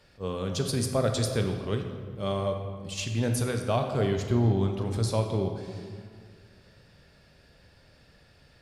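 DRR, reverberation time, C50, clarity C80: 4.0 dB, 1.9 s, 5.5 dB, 7.0 dB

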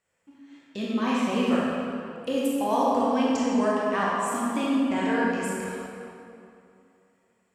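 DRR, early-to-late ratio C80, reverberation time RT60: −6.0 dB, −1.5 dB, 2.7 s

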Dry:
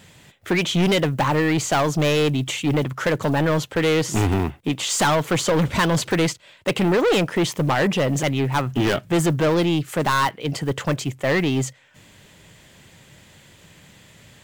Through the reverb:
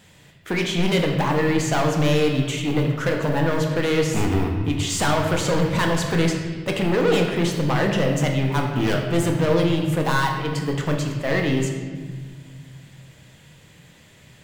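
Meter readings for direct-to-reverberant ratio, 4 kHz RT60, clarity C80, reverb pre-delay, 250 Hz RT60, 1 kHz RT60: 1.0 dB, 1.2 s, 6.0 dB, 4 ms, 2.8 s, 1.4 s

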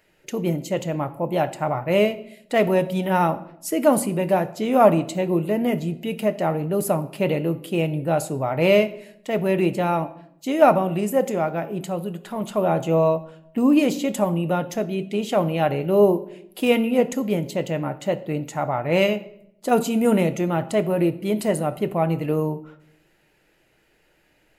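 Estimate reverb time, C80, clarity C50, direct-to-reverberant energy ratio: 0.70 s, 19.0 dB, 16.0 dB, 9.5 dB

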